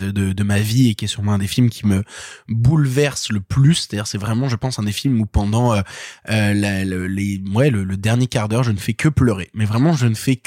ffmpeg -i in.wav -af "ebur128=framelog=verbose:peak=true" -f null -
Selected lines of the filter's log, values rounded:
Integrated loudness:
  I:         -18.3 LUFS
  Threshold: -28.4 LUFS
Loudness range:
  LRA:         1.5 LU
  Threshold: -38.6 LUFS
  LRA low:   -19.5 LUFS
  LRA high:  -18.0 LUFS
True peak:
  Peak:       -3.9 dBFS